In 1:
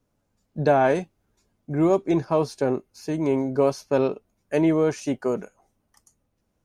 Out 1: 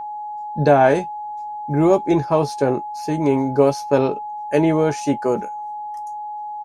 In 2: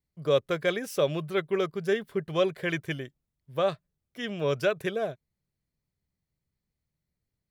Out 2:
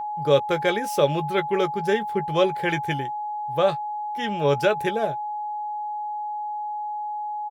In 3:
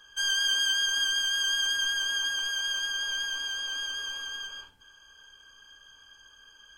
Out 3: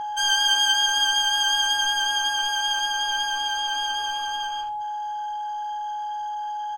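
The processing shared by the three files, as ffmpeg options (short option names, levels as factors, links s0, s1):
-filter_complex "[0:a]aeval=exprs='val(0)+0.0251*sin(2*PI*840*n/s)':c=same,asplit=2[s0][s1];[s1]adelay=14,volume=0.316[s2];[s0][s2]amix=inputs=2:normalize=0,volume=1.68"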